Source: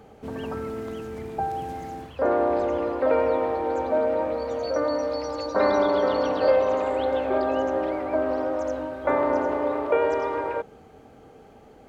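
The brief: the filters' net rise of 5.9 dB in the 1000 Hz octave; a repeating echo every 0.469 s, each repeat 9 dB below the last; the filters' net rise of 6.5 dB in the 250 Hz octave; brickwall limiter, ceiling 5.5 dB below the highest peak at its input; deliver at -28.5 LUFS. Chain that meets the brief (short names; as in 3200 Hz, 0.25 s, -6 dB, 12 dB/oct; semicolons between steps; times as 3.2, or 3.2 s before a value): bell 250 Hz +7.5 dB; bell 1000 Hz +7 dB; limiter -11.5 dBFS; feedback echo 0.469 s, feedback 35%, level -9 dB; gain -6.5 dB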